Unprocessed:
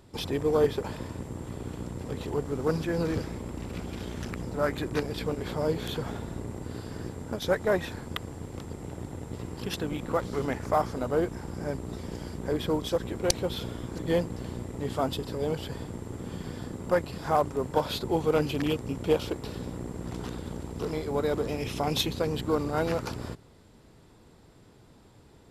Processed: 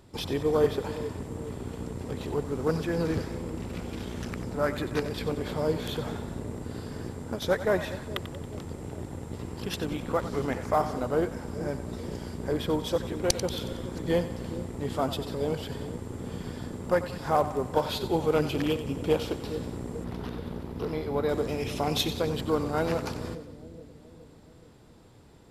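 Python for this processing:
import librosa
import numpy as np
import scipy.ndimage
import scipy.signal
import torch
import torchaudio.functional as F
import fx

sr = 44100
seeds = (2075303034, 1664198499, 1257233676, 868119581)

y = fx.peak_eq(x, sr, hz=7700.0, db=-15.0, octaves=0.69, at=(20.04, 21.29))
y = fx.echo_split(y, sr, split_hz=530.0, low_ms=421, high_ms=92, feedback_pct=52, wet_db=-12)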